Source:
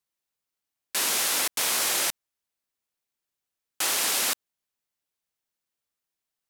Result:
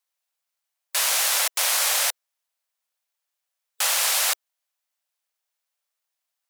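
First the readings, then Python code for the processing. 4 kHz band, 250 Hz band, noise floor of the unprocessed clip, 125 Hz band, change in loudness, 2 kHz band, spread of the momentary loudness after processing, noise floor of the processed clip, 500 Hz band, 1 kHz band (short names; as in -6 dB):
+3.5 dB, under -35 dB, under -85 dBFS, n/a, +3.5 dB, +3.5 dB, 8 LU, -83 dBFS, +1.0 dB, +3.5 dB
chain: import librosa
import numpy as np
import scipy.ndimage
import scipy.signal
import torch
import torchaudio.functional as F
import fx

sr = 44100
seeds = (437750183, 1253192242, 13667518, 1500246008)

y = np.where(x < 0.0, 10.0 ** (-12.0 / 20.0) * x, x)
y = scipy.signal.sosfilt(scipy.signal.butter(8, 520.0, 'highpass', fs=sr, output='sos'), y)
y = fx.spec_gate(y, sr, threshold_db=-25, keep='strong')
y = y * librosa.db_to_amplitude(7.0)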